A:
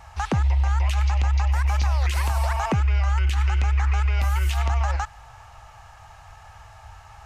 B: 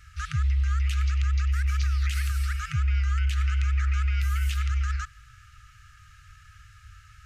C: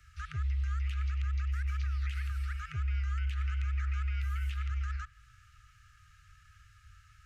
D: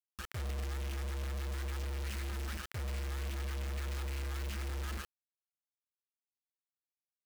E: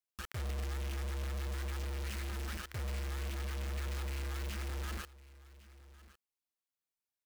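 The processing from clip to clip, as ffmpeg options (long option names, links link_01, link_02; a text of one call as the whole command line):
ffmpeg -i in.wav -af "afftfilt=real='re*(1-between(b*sr/4096,160,1200))':imag='im*(1-between(b*sr/4096,160,1200))':win_size=4096:overlap=0.75,volume=-3.5dB" out.wav
ffmpeg -i in.wav -filter_complex "[0:a]acrossover=split=130|460|3300[link_01][link_02][link_03][link_04];[link_02]asoftclip=type=tanh:threshold=-38.5dB[link_05];[link_04]acompressor=threshold=-54dB:ratio=6[link_06];[link_01][link_05][link_03][link_06]amix=inputs=4:normalize=0,volume=-8dB" out.wav
ffmpeg -i in.wav -af "acrusher=bits=5:mix=0:aa=0.000001,volume=-5.5dB" out.wav
ffmpeg -i in.wav -af "aecho=1:1:1105:0.106" out.wav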